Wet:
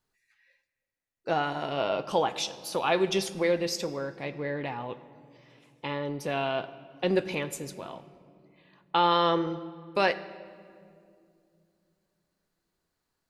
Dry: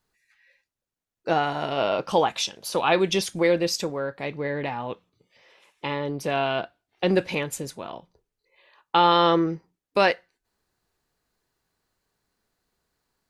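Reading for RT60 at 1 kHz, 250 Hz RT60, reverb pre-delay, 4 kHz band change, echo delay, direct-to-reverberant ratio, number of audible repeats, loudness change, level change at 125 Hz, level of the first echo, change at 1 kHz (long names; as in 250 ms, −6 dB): 2.0 s, 3.8 s, 8 ms, −5.0 dB, no echo audible, 11.0 dB, no echo audible, −5.0 dB, −4.5 dB, no echo audible, −5.0 dB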